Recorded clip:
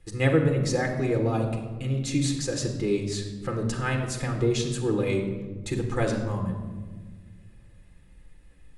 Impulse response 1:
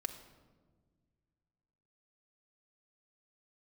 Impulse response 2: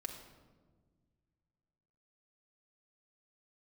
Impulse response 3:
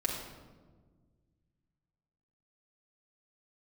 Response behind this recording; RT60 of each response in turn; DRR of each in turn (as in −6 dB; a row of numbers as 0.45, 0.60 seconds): 2; 1.6, 1.5, 1.5 seconds; 6.5, 2.5, −2.5 decibels